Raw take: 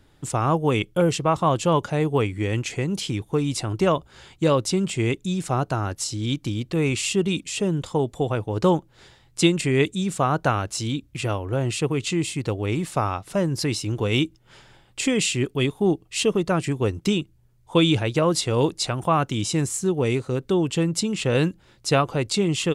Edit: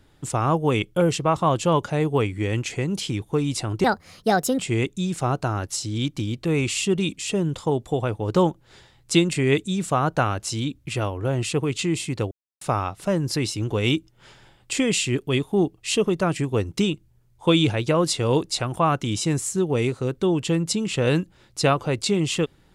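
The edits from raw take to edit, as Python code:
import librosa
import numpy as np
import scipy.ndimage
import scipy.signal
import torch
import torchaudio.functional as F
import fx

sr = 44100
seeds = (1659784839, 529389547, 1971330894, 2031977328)

y = fx.edit(x, sr, fx.speed_span(start_s=3.84, length_s=1.03, speed=1.37),
    fx.silence(start_s=12.59, length_s=0.3), tone=tone)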